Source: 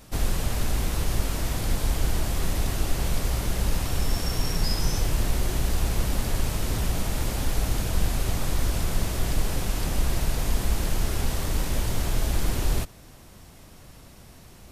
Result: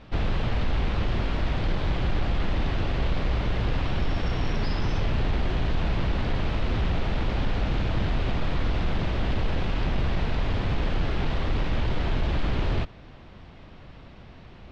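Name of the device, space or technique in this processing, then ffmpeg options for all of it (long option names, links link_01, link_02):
synthesiser wavefolder: -af "aeval=exprs='0.0944*(abs(mod(val(0)/0.0944+3,4)-2)-1)':channel_layout=same,lowpass=frequency=3600:width=0.5412,lowpass=frequency=3600:width=1.3066,volume=2.5dB"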